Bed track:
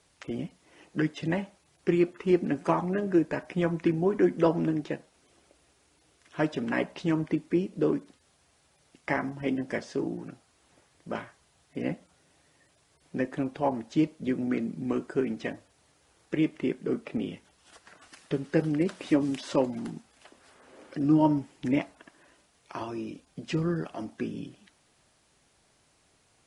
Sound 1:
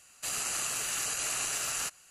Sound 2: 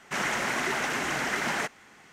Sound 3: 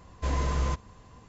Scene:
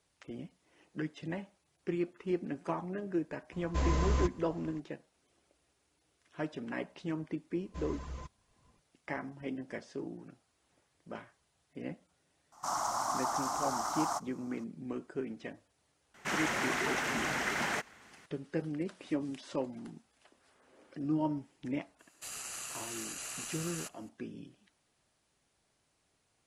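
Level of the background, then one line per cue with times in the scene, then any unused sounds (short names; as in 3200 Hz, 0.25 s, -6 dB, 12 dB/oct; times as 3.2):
bed track -10 dB
3.52 add 3 -2.5 dB
7.52 add 3 -14 dB + reverb removal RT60 0.62 s
12.52 add 2 -7.5 dB + EQ curve 110 Hz 0 dB, 200 Hz -11 dB, 300 Hz -2 dB, 430 Hz -17 dB, 700 Hz +8 dB, 1200 Hz +9 dB, 1700 Hz -16 dB, 2500 Hz -21 dB, 5300 Hz +6 dB, 15000 Hz +3 dB
16.14 add 2 -4.5 dB + bell 69 Hz +5.5 dB 1.2 oct
21.99 add 1 -9.5 dB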